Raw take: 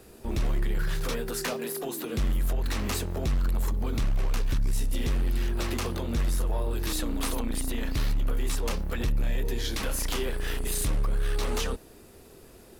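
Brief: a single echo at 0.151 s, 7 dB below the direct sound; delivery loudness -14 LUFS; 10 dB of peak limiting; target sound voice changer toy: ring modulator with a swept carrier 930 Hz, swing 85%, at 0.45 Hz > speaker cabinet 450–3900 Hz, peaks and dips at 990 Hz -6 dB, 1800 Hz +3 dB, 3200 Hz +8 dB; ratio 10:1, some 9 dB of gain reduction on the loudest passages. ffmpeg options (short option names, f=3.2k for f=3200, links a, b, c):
-af "acompressor=threshold=-32dB:ratio=10,alimiter=level_in=10dB:limit=-24dB:level=0:latency=1,volume=-10dB,aecho=1:1:151:0.447,aeval=exprs='val(0)*sin(2*PI*930*n/s+930*0.85/0.45*sin(2*PI*0.45*n/s))':c=same,highpass=450,equalizer=f=990:t=q:w=4:g=-6,equalizer=f=1.8k:t=q:w=4:g=3,equalizer=f=3.2k:t=q:w=4:g=8,lowpass=f=3.9k:w=0.5412,lowpass=f=3.9k:w=1.3066,volume=26dB"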